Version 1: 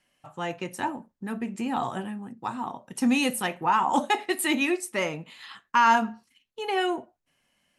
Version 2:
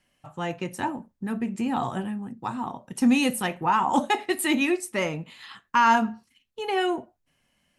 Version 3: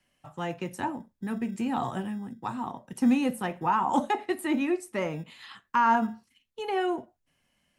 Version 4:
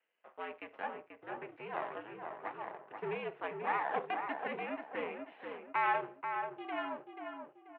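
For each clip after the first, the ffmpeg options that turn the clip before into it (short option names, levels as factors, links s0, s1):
-af "lowshelf=f=190:g=8.5"
-filter_complex "[0:a]acrossover=split=130|1700[s0][s1][s2];[s0]acrusher=samples=25:mix=1:aa=0.000001[s3];[s2]acompressor=threshold=0.0112:ratio=6[s4];[s3][s1][s4]amix=inputs=3:normalize=0,volume=0.75"
-filter_complex "[0:a]aeval=exprs='max(val(0),0)':c=same,asplit=2[s0][s1];[s1]adelay=485,lowpass=f=2000:p=1,volume=0.562,asplit=2[s2][s3];[s3]adelay=485,lowpass=f=2000:p=1,volume=0.38,asplit=2[s4][s5];[s5]adelay=485,lowpass=f=2000:p=1,volume=0.38,asplit=2[s6][s7];[s7]adelay=485,lowpass=f=2000:p=1,volume=0.38,asplit=2[s8][s9];[s9]adelay=485,lowpass=f=2000:p=1,volume=0.38[s10];[s0][s2][s4][s6][s8][s10]amix=inputs=6:normalize=0,highpass=f=440:t=q:w=0.5412,highpass=f=440:t=q:w=1.307,lowpass=f=2900:t=q:w=0.5176,lowpass=f=2900:t=q:w=0.7071,lowpass=f=2900:t=q:w=1.932,afreqshift=-82,volume=0.668"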